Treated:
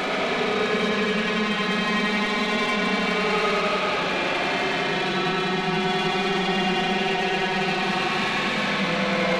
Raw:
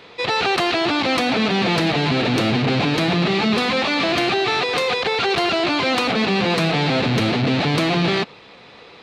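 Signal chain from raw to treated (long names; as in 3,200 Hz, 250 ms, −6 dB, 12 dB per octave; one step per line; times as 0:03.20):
high-pass filter 670 Hz 6 dB per octave
parametric band 5,900 Hz −10.5 dB 1.5 octaves
in parallel at 0 dB: downward compressor, threshold −35 dBFS, peak gain reduction 14.5 dB
on the sum: extreme stretch with random phases 30×, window 0.05 s, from 0:01.36
soft clipping −21.5 dBFS, distortion −13 dB
bucket-brigade delay 92 ms, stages 4,096, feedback 81%, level −6 dB
on a send at −10 dB: convolution reverb RT60 0.30 s, pre-delay 4 ms
on the sum: wrong playback speed 25 fps video run at 24 fps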